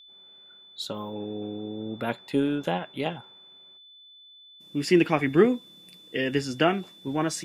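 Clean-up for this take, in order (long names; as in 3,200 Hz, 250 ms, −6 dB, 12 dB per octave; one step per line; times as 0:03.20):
notch filter 3,500 Hz, Q 30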